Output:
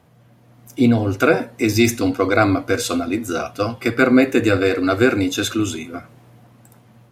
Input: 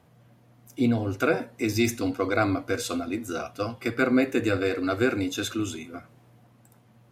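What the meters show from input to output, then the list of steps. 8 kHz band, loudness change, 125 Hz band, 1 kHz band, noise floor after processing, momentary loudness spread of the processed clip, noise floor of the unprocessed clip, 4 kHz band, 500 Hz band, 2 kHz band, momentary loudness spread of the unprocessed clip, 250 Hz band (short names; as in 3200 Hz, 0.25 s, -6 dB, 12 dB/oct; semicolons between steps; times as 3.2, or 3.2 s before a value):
+8.5 dB, +8.5 dB, +8.5 dB, +8.5 dB, -52 dBFS, 10 LU, -58 dBFS, +8.5 dB, +8.5 dB, +8.5 dB, 10 LU, +8.5 dB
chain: AGC gain up to 4 dB; gain +4.5 dB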